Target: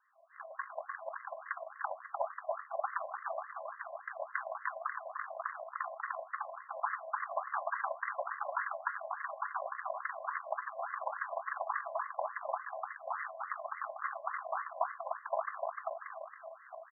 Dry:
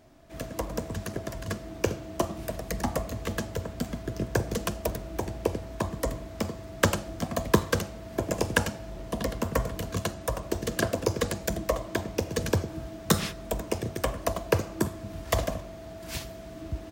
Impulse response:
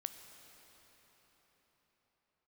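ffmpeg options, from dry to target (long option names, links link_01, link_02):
-filter_complex "[0:a]aecho=1:1:300|540|732|885.6|1008:0.631|0.398|0.251|0.158|0.1,acrusher=bits=3:mode=log:mix=0:aa=0.000001,aeval=exprs='0.794*(cos(1*acos(clip(val(0)/0.794,-1,1)))-cos(1*PI/2))+0.251*(cos(8*acos(clip(val(0)/0.794,-1,1)))-cos(8*PI/2))':channel_layout=same,asuperstop=centerf=910:order=4:qfactor=5.9[link_01];[1:a]atrim=start_sample=2205,atrim=end_sample=3528[link_02];[link_01][link_02]afir=irnorm=-1:irlink=0,aeval=exprs='(tanh(14.1*val(0)+0.65)-tanh(0.65))/14.1':channel_layout=same,afftfilt=real='re*between(b*sr/1024,750*pow(1500/750,0.5+0.5*sin(2*PI*3.5*pts/sr))/1.41,750*pow(1500/750,0.5+0.5*sin(2*PI*3.5*pts/sr))*1.41)':imag='im*between(b*sr/1024,750*pow(1500/750,0.5+0.5*sin(2*PI*3.5*pts/sr))/1.41,750*pow(1500/750,0.5+0.5*sin(2*PI*3.5*pts/sr))*1.41)':win_size=1024:overlap=0.75,volume=3.5dB"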